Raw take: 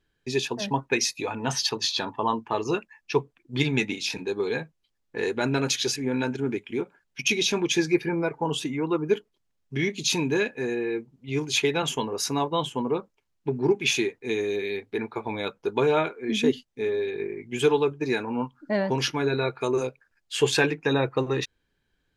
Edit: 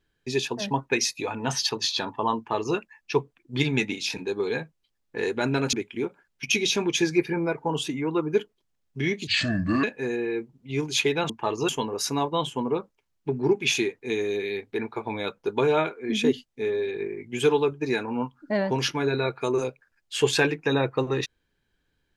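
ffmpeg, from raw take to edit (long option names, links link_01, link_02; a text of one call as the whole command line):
ffmpeg -i in.wav -filter_complex "[0:a]asplit=6[link_01][link_02][link_03][link_04][link_05][link_06];[link_01]atrim=end=5.732[link_07];[link_02]atrim=start=6.488:end=10.034[link_08];[link_03]atrim=start=10.03:end=10.42,asetpts=PTS-STARTPTS,asetrate=30429,aresample=44100,atrim=end_sample=24926,asetpts=PTS-STARTPTS[link_09];[link_04]atrim=start=10.416:end=11.882[link_10];[link_05]atrim=start=2.368:end=2.762[link_11];[link_06]atrim=start=11.878[link_12];[link_07][link_08]acrossfade=duration=0.004:curve1=hsin:curve2=hsin[link_13];[link_13][link_09]acrossfade=duration=0.004:curve1=hsin:curve2=hsin[link_14];[link_14][link_10]acrossfade=duration=0.004:curve1=hsin:curve2=hsin[link_15];[link_15][link_11]acrossfade=duration=0.004:curve1=hsin:curve2=hsin[link_16];[link_16][link_12]acrossfade=duration=0.004:curve1=hsin:curve2=hsin" out.wav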